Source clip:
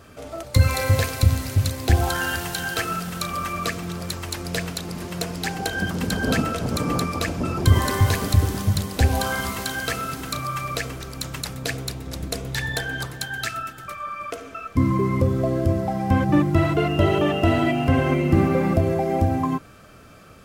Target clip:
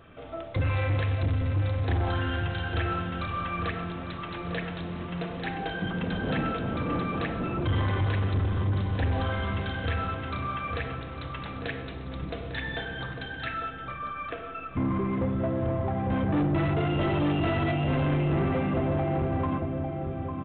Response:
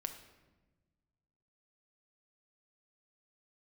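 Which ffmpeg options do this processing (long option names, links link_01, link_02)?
-filter_complex "[0:a]asplit=2[link_01][link_02];[link_02]adelay=851,lowpass=frequency=1500:poles=1,volume=-7dB,asplit=2[link_03][link_04];[link_04]adelay=851,lowpass=frequency=1500:poles=1,volume=0.41,asplit=2[link_05][link_06];[link_06]adelay=851,lowpass=frequency=1500:poles=1,volume=0.41,asplit=2[link_07][link_08];[link_08]adelay=851,lowpass=frequency=1500:poles=1,volume=0.41,asplit=2[link_09][link_10];[link_10]adelay=851,lowpass=frequency=1500:poles=1,volume=0.41[link_11];[link_01][link_03][link_05][link_07][link_09][link_11]amix=inputs=6:normalize=0[link_12];[1:a]atrim=start_sample=2205[link_13];[link_12][link_13]afir=irnorm=-1:irlink=0,aresample=8000,asoftclip=type=tanh:threshold=-19dB,aresample=44100,volume=-2.5dB"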